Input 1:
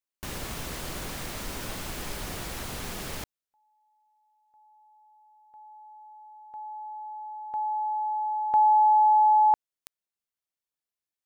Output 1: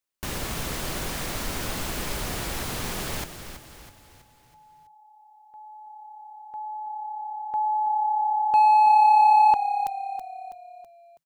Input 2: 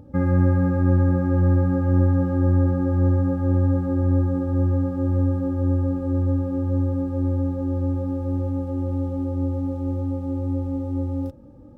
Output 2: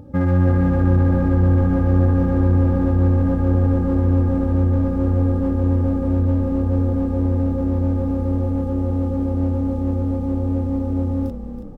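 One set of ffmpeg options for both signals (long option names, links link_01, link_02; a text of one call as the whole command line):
ffmpeg -i in.wav -filter_complex "[0:a]asplit=2[link_01][link_02];[link_02]volume=23.5dB,asoftclip=hard,volume=-23.5dB,volume=-3dB[link_03];[link_01][link_03]amix=inputs=2:normalize=0,asplit=6[link_04][link_05][link_06][link_07][link_08][link_09];[link_05]adelay=326,afreqshift=-34,volume=-10dB[link_10];[link_06]adelay=652,afreqshift=-68,volume=-16.4dB[link_11];[link_07]adelay=978,afreqshift=-102,volume=-22.8dB[link_12];[link_08]adelay=1304,afreqshift=-136,volume=-29.1dB[link_13];[link_09]adelay=1630,afreqshift=-170,volume=-35.5dB[link_14];[link_04][link_10][link_11][link_12][link_13][link_14]amix=inputs=6:normalize=0" out.wav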